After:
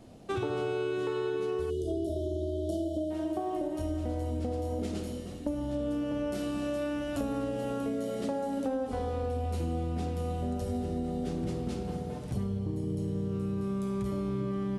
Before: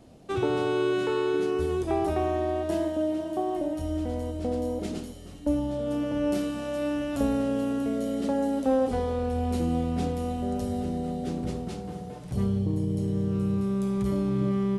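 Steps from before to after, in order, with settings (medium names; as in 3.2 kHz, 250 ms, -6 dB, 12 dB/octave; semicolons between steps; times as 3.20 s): on a send at -7 dB: reverberation RT60 1.8 s, pre-delay 9 ms; on the sum: spectral selection erased 1.70–3.11 s, 690–2900 Hz; compression, threshold -29 dBFS, peak gain reduction 11 dB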